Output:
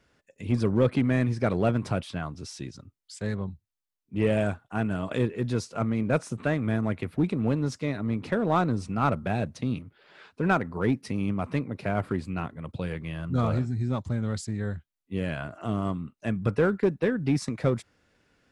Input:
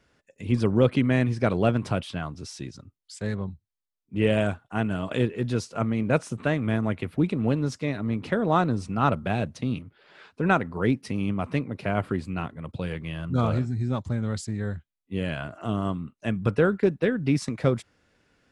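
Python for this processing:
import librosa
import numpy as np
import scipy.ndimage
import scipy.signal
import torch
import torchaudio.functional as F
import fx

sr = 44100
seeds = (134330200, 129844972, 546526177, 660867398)

p1 = fx.dynamic_eq(x, sr, hz=3000.0, q=3.8, threshold_db=-51.0, ratio=4.0, max_db=-5)
p2 = np.clip(p1, -10.0 ** (-19.0 / 20.0), 10.0 ** (-19.0 / 20.0))
p3 = p1 + (p2 * 10.0 ** (-4.5 / 20.0))
y = p3 * 10.0 ** (-5.0 / 20.0)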